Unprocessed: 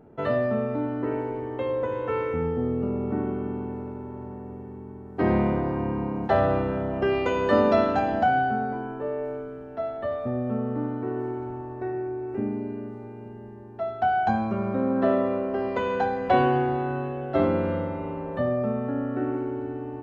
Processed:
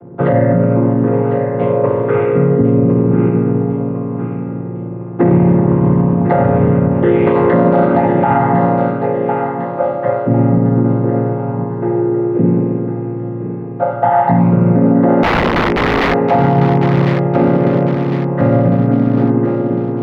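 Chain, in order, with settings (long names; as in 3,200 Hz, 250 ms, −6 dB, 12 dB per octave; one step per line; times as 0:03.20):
channel vocoder with a chord as carrier minor triad, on A#2
spring reverb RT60 1.3 s, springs 48 ms, chirp 70 ms, DRR 14 dB
0:15.23–0:16.14: wrap-around overflow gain 24.5 dB
high-frequency loss of the air 320 metres
feedback echo with a high-pass in the loop 1,053 ms, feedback 45%, high-pass 290 Hz, level −8.5 dB
dynamic equaliser 2,000 Hz, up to +5 dB, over −59 dBFS, Q 6.3
boost into a limiter +19.5 dB
level −2 dB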